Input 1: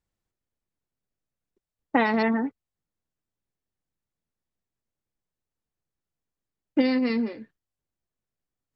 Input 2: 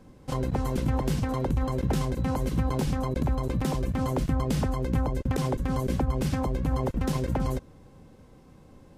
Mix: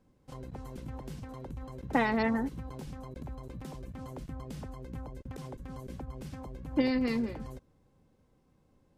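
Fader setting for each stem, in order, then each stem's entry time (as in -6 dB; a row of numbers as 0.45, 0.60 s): -5.5, -15.5 dB; 0.00, 0.00 s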